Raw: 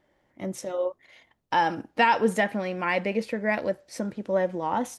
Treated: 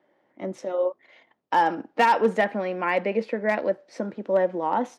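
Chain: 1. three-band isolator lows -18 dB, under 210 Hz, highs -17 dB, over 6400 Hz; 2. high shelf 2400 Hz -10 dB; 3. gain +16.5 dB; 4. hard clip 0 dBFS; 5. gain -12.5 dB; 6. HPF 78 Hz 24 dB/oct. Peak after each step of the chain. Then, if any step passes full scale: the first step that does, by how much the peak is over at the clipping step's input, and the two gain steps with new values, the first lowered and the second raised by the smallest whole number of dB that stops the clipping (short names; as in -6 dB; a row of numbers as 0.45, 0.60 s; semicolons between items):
-8.5, -10.0, +6.5, 0.0, -12.5, -10.0 dBFS; step 3, 6.5 dB; step 3 +9.5 dB, step 5 -5.5 dB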